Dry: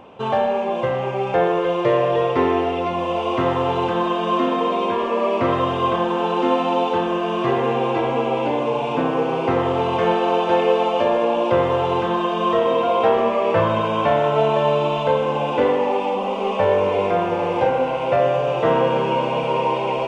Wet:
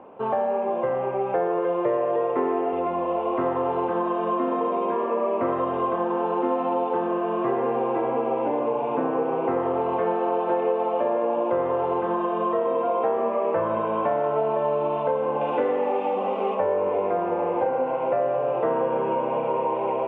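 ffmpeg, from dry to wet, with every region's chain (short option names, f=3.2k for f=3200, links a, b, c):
-filter_complex "[0:a]asettb=1/sr,asplit=3[a][b][c];[a]atrim=end=1.974[d];[b]atrim=start=1.97:end=2.73,asetpts=PTS-STARTPTS,afade=t=in:d=0.004:c=qsin,afade=t=out:st=0.756:d=0.004:c=qsin,highpass=150,equalizer=f=4.9k:w=3.4:g=-7.5[e];[c]atrim=start=2.726[f];[d][e]acrossfade=d=0.004:c1=hsin:c2=qsin[g];[g][f]acrossfade=d=0.004:c1=qsin:c2=hsin,asettb=1/sr,asplit=3[h][i][j];[h]atrim=end=15.414[k];[i]atrim=start=15.41:end=16.55,asetpts=PTS-STARTPTS,afade=t=in:d=0.004:c=qsin,afade=t=out:st=1.136:d=0.004:c=qsin,highshelf=f=2.2k:g=10.5,bandreject=f=980:w=14[l];[j]atrim=start=16.546[m];[k][l]acrossfade=d=0.004:c1=hsin:c2=qsin[n];[n][m]acrossfade=d=0.004:c1=qsin:c2=hsin,acrossover=split=220 2400:gain=0.224 1 0.0891[o][p][q];[o][p][q]amix=inputs=3:normalize=0,acompressor=threshold=-20dB:ratio=3,highshelf=f=2.2k:g=-11.5"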